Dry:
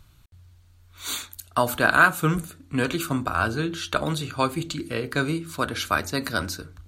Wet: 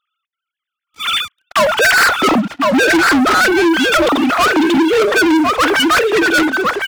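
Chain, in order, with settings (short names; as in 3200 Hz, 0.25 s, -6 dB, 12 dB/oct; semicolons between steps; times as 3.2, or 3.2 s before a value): sine-wave speech; echo 1.056 s -10 dB; overloaded stage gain 14.5 dB; sample leveller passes 5; gain +5.5 dB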